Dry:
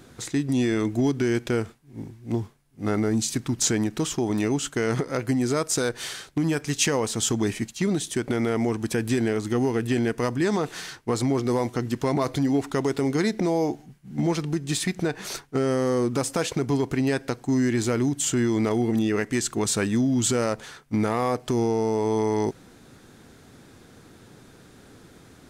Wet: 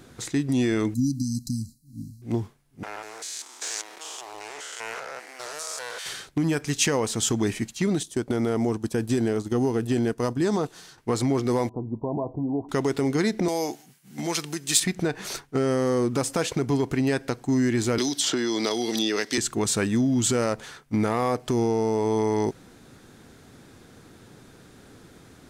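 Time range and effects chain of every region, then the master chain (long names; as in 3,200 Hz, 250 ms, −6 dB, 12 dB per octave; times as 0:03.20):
0:00.94–0:02.22: linear-phase brick-wall band-stop 300–3,900 Hz + high-shelf EQ 5,900 Hz +8 dB
0:02.83–0:06.06: spectrum averaged block by block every 200 ms + high-pass filter 630 Hz 24 dB per octave + highs frequency-modulated by the lows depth 0.72 ms
0:08.03–0:10.98: parametric band 2,100 Hz −7.5 dB 1 octave + noise gate −31 dBFS, range −8 dB
0:11.69–0:12.69: Chebyshev low-pass filter 1,000 Hz, order 6 + tuned comb filter 110 Hz, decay 0.19 s, mix 50%
0:13.48–0:14.80: high-pass filter 83 Hz + spectral tilt +3.5 dB per octave
0:17.98–0:19.38: high-pass filter 330 Hz + flat-topped bell 4,400 Hz +11.5 dB 1 octave + multiband upward and downward compressor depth 100%
whole clip: no processing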